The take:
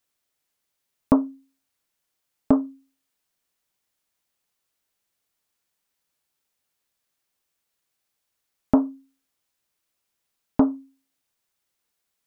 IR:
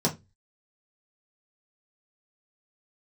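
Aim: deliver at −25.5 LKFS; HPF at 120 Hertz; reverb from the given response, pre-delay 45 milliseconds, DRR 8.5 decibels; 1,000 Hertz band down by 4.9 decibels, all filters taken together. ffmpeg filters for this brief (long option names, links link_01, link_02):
-filter_complex "[0:a]highpass=120,equalizer=frequency=1000:width_type=o:gain=-6,asplit=2[link_01][link_02];[1:a]atrim=start_sample=2205,adelay=45[link_03];[link_02][link_03]afir=irnorm=-1:irlink=0,volume=-19dB[link_04];[link_01][link_04]amix=inputs=2:normalize=0,volume=-4.5dB"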